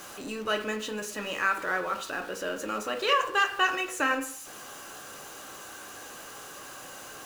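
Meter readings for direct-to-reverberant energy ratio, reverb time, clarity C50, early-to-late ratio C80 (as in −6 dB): 3.5 dB, 0.60 s, 10.0 dB, 13.5 dB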